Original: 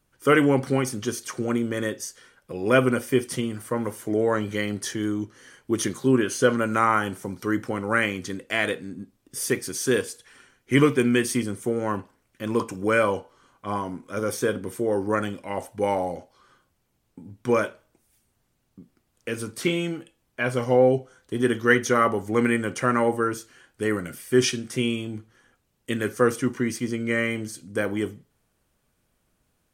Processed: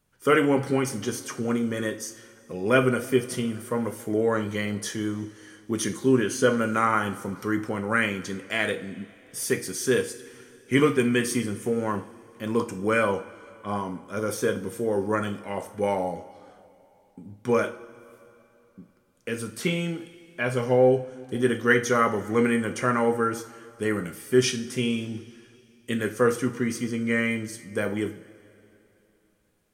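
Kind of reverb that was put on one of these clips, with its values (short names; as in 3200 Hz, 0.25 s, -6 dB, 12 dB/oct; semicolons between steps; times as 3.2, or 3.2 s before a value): two-slope reverb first 0.38 s, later 3 s, from -18 dB, DRR 7 dB; gain -2 dB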